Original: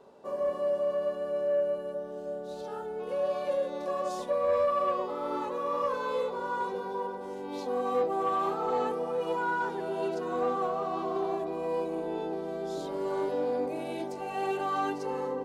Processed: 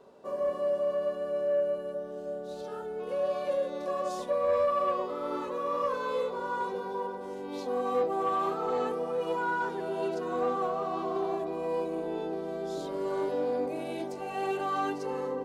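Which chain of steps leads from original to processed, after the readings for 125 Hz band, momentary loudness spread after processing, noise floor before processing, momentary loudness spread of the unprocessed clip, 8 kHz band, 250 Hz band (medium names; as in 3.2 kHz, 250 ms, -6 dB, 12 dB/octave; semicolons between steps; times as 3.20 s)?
0.0 dB, 8 LU, -39 dBFS, 8 LU, no reading, 0.0 dB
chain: band-stop 850 Hz, Q 12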